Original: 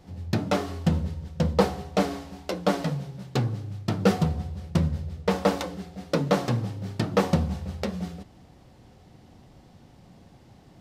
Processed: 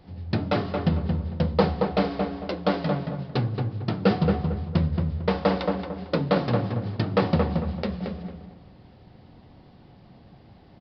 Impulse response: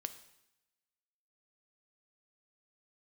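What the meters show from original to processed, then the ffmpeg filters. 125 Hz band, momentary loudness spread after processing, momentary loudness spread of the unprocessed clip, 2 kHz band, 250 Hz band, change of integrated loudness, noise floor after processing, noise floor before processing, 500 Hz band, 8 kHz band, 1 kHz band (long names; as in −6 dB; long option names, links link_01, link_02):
+1.5 dB, 7 LU, 10 LU, +1.0 dB, +1.5 dB, +1.5 dB, −52 dBFS, −54 dBFS, +1.5 dB, below −20 dB, +1.5 dB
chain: -filter_complex "[0:a]asplit=2[link_01][link_02];[link_02]adelay=225,lowpass=frequency=1800:poles=1,volume=-3.5dB,asplit=2[link_03][link_04];[link_04]adelay=225,lowpass=frequency=1800:poles=1,volume=0.32,asplit=2[link_05][link_06];[link_06]adelay=225,lowpass=frequency=1800:poles=1,volume=0.32,asplit=2[link_07][link_08];[link_08]adelay=225,lowpass=frequency=1800:poles=1,volume=0.32[link_09];[link_01][link_03][link_05][link_07][link_09]amix=inputs=5:normalize=0,aresample=11025,aresample=44100"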